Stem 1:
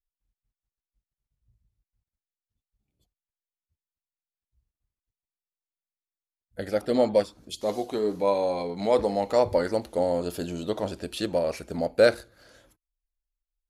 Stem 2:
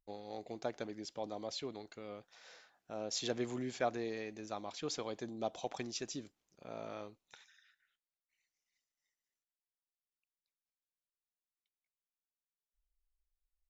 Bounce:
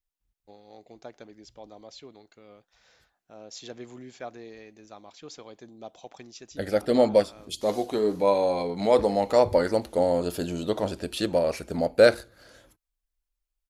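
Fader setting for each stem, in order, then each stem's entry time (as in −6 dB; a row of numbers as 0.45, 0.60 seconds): +2.0, −4.0 decibels; 0.00, 0.40 seconds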